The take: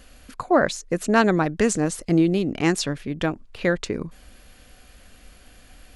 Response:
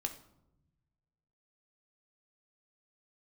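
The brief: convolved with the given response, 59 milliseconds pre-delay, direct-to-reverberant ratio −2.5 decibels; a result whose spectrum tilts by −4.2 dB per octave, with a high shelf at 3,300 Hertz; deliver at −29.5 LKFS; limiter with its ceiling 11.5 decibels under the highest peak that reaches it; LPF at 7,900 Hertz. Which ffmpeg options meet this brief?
-filter_complex "[0:a]lowpass=7900,highshelf=frequency=3300:gain=9,alimiter=limit=-14.5dB:level=0:latency=1,asplit=2[link_01][link_02];[1:a]atrim=start_sample=2205,adelay=59[link_03];[link_02][link_03]afir=irnorm=-1:irlink=0,volume=2dB[link_04];[link_01][link_04]amix=inputs=2:normalize=0,volume=-8dB"

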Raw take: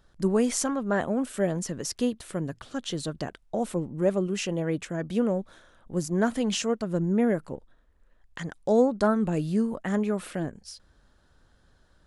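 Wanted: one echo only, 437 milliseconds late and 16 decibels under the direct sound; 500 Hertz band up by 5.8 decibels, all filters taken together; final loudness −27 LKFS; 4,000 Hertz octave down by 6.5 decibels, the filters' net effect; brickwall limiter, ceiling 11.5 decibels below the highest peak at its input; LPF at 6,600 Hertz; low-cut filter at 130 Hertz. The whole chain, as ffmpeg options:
ffmpeg -i in.wav -af "highpass=130,lowpass=6600,equalizer=frequency=500:width_type=o:gain=7,equalizer=frequency=4000:width_type=o:gain=-9,alimiter=limit=-17dB:level=0:latency=1,aecho=1:1:437:0.158,volume=1dB" out.wav

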